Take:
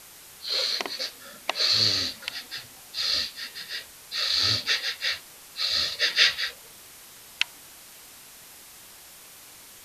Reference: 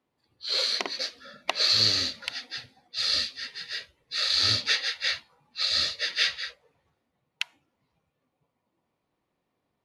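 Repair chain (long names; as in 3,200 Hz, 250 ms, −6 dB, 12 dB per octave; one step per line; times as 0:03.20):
broadband denoise 30 dB, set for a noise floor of −48 dBFS
level correction −5.5 dB, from 0:05.92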